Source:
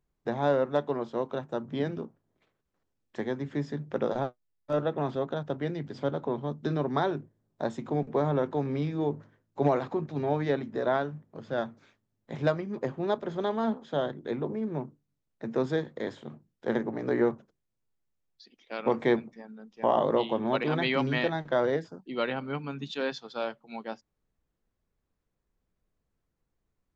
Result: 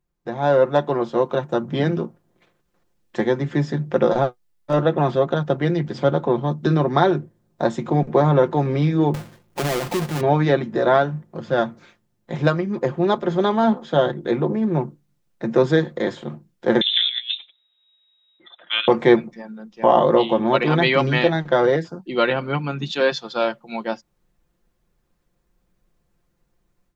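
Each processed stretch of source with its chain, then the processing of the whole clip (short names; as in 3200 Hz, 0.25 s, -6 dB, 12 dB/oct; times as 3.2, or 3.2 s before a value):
9.14–10.21 half-waves squared off + compressor 3:1, threshold -36 dBFS
16.81–18.88 negative-ratio compressor -32 dBFS, ratio -0.5 + inverted band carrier 3800 Hz + Bessel high-pass 460 Hz
whole clip: comb 5.7 ms, depth 49%; AGC gain up to 11 dB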